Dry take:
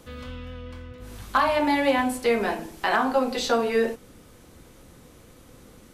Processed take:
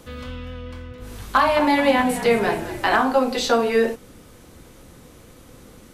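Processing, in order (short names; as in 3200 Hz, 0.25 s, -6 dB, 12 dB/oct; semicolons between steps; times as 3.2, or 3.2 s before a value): 0.76–3.02 frequency-shifting echo 0.215 s, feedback 63%, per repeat -53 Hz, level -13 dB; gain +4 dB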